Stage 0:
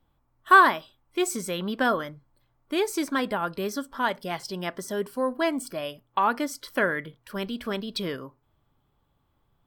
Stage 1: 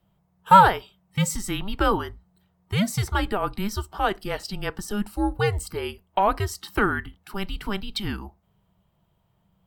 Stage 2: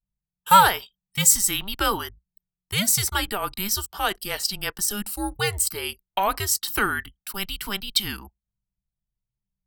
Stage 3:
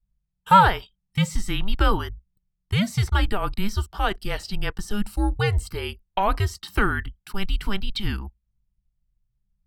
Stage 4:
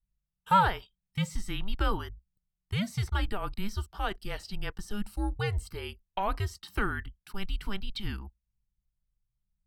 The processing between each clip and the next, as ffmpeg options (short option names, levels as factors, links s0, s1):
-af "afreqshift=-200,volume=1.33"
-af "crystalizer=i=9:c=0,anlmdn=2.51,volume=0.501"
-filter_complex "[0:a]aemphasis=mode=reproduction:type=bsi,acrossover=split=3800[s0][s1];[s1]acompressor=threshold=0.0126:ratio=4:attack=1:release=60[s2];[s0][s2]amix=inputs=2:normalize=0"
-af "bandreject=f=7300:w=30,volume=0.376"